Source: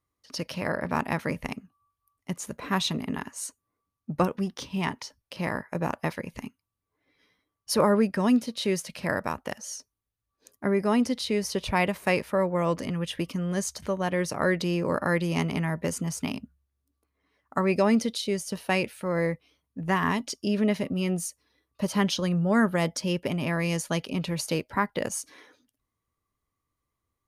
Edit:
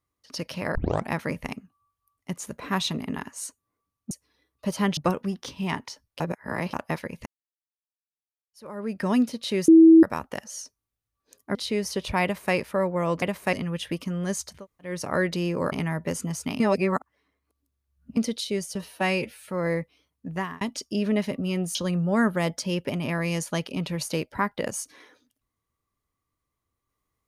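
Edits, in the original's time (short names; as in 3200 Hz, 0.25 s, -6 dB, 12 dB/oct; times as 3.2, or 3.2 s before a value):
0.75 tape start 0.33 s
5.34–5.87 reverse
6.4–8.16 fade in exponential
8.82–9.17 bleep 325 Hz -8.5 dBFS
10.69–11.14 cut
11.82–12.13 copy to 12.81
13.83–14.19 room tone, crossfade 0.24 s
15–15.49 cut
16.37–17.94 reverse
18.52–19.02 stretch 1.5×
19.79–20.13 fade out
21.27–22.13 move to 4.11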